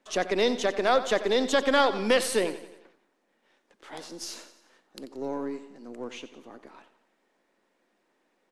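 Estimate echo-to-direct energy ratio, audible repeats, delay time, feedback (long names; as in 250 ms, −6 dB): −12.5 dB, 4, 89 ms, 52%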